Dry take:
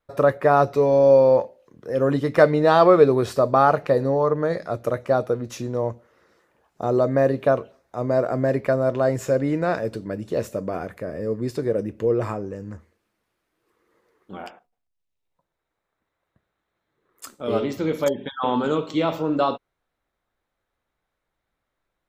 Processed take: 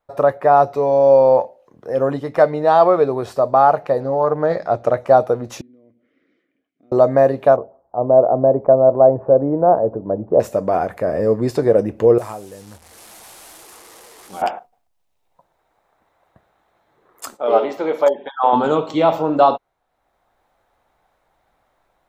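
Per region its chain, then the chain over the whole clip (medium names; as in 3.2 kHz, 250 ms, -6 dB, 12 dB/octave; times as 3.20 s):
4.00–4.98 s: low-pass 6.9 kHz + loudspeaker Doppler distortion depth 0.15 ms
5.61–6.92 s: treble shelf 3.5 kHz -7 dB + compression 2:1, threshold -50 dBFS + vowel filter i
7.56–10.40 s: low-pass 1 kHz 24 dB/octave + dynamic bell 500 Hz, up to +3 dB, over -33 dBFS, Q 0.91
12.18–14.42 s: one-bit delta coder 64 kbps, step -41.5 dBFS + pre-emphasis filter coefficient 0.8
17.37–18.53 s: high-pass 460 Hz + treble shelf 3.5 kHz -12 dB
whole clip: peaking EQ 770 Hz +11.5 dB 0.94 oct; level rider; trim -1 dB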